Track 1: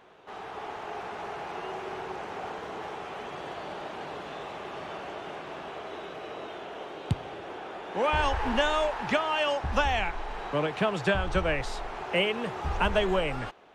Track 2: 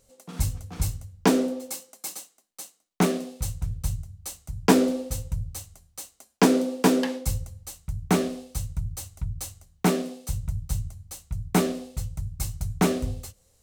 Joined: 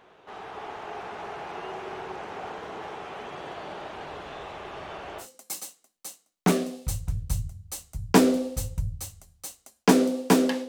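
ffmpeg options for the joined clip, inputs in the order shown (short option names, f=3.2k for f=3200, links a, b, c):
-filter_complex "[0:a]asplit=3[a][b][c];[a]afade=t=out:st=3.82:d=0.02[d];[b]asubboost=boost=3.5:cutoff=93,afade=t=in:st=3.82:d=0.02,afade=t=out:st=5.28:d=0.02[e];[c]afade=t=in:st=5.28:d=0.02[f];[d][e][f]amix=inputs=3:normalize=0,apad=whole_dur=10.68,atrim=end=10.68,atrim=end=5.28,asetpts=PTS-STARTPTS[g];[1:a]atrim=start=1.72:end=7.22,asetpts=PTS-STARTPTS[h];[g][h]acrossfade=d=0.1:c1=tri:c2=tri"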